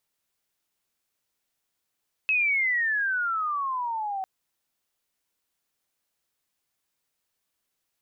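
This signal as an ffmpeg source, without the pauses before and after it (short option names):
-f lavfi -i "aevalsrc='pow(10,(-20-8*t/1.95)/20)*sin(2*PI*2600*1.95/log(750/2600)*(exp(log(750/2600)*t/1.95)-1))':d=1.95:s=44100"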